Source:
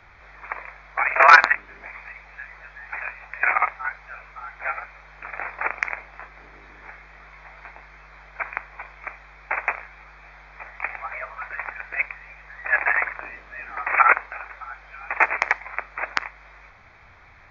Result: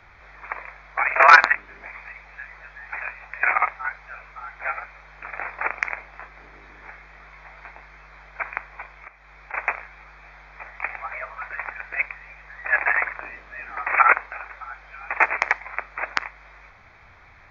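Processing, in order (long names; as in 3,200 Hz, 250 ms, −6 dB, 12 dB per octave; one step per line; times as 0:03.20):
0:08.85–0:09.54: downward compressor 5 to 1, threshold −41 dBFS, peak gain reduction 18 dB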